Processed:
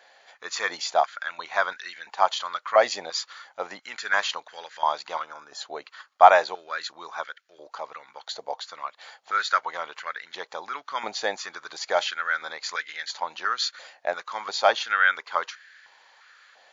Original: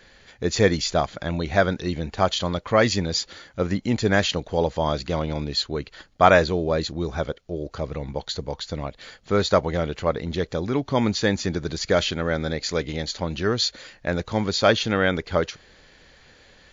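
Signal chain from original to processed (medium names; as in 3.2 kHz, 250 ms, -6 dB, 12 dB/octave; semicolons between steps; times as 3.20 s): time-frequency box 5.24–5.61 s, 1.8–4.9 kHz -13 dB; step-sequenced high-pass 2.9 Hz 720–1600 Hz; trim -4.5 dB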